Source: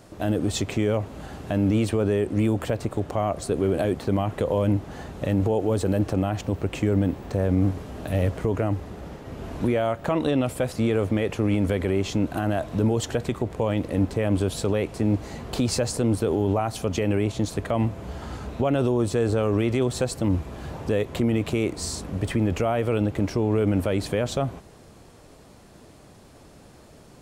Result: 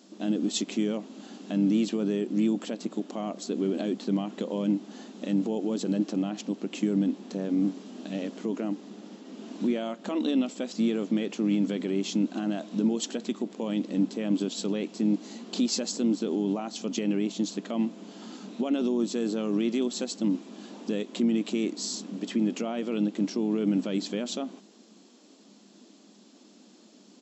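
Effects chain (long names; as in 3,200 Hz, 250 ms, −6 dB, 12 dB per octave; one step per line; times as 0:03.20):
brick-wall band-pass 190–7,800 Hz
flat-topped bell 990 Hz −10.5 dB 2.8 octaves
pitch-shifted copies added −4 semitones −17 dB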